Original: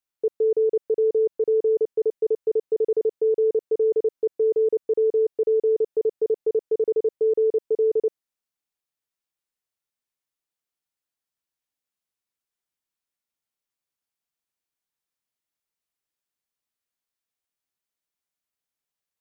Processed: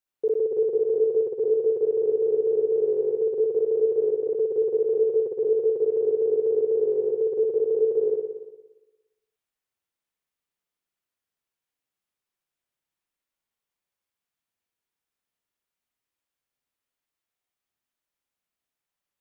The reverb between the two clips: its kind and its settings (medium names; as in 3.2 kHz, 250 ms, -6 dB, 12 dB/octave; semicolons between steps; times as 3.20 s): spring tank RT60 1.1 s, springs 58 ms, chirp 80 ms, DRR -2.5 dB; trim -1.5 dB